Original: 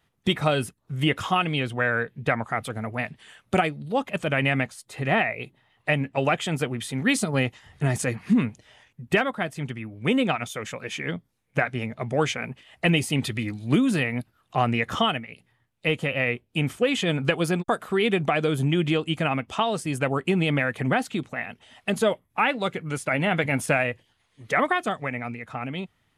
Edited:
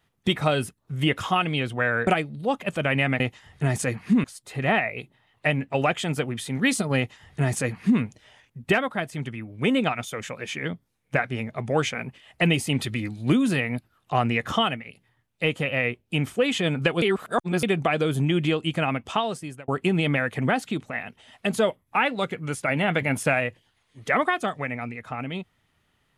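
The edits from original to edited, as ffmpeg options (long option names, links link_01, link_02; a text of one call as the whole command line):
ffmpeg -i in.wav -filter_complex "[0:a]asplit=7[link_01][link_02][link_03][link_04][link_05][link_06][link_07];[link_01]atrim=end=2.072[link_08];[link_02]atrim=start=3.538:end=4.672[link_09];[link_03]atrim=start=7.398:end=8.442[link_10];[link_04]atrim=start=4.668:end=17.452[link_11];[link_05]atrim=start=17.448:end=18.062,asetpts=PTS-STARTPTS,areverse[link_12];[link_06]atrim=start=18.058:end=20.11,asetpts=PTS-STARTPTS,afade=type=out:start_time=1.532:duration=0.52[link_13];[link_07]atrim=start=20.11,asetpts=PTS-STARTPTS,afade=type=in:duration=0.004:curve=hsin[link_14];[link_08][link_09]acrossfade=duration=0.004:curve1=hsin:curve2=hsin[link_15];[link_15][link_10]acrossfade=duration=0.004:curve1=hsin:curve2=hsin[link_16];[link_16][link_11]acrossfade=duration=0.004:curve1=hsin:curve2=hsin[link_17];[link_17][link_12]acrossfade=duration=0.004:curve1=hsin:curve2=hsin[link_18];[link_13][link_14]concat=n=2:v=0:a=1[link_19];[link_18][link_19]acrossfade=duration=0.004:curve1=hsin:curve2=hsin" out.wav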